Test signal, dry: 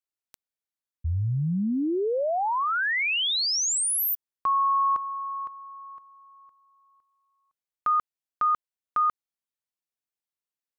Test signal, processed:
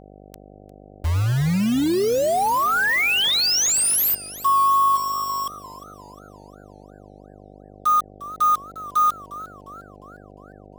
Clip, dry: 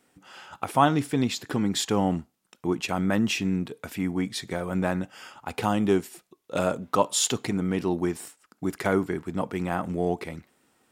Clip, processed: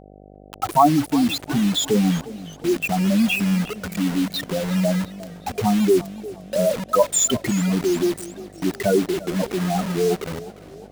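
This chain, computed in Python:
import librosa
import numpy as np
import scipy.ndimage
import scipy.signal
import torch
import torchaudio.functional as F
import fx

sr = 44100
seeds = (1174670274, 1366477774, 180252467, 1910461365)

y = fx.spec_expand(x, sr, power=3.7)
y = fx.quant_dither(y, sr, seeds[0], bits=6, dither='none')
y = fx.dmg_buzz(y, sr, base_hz=50.0, harmonics=15, level_db=-52.0, tilt_db=-1, odd_only=False)
y = fx.echo_warbled(y, sr, ms=353, feedback_pct=50, rate_hz=2.8, cents=108, wet_db=-17)
y = y * 10.0 ** (6.5 / 20.0)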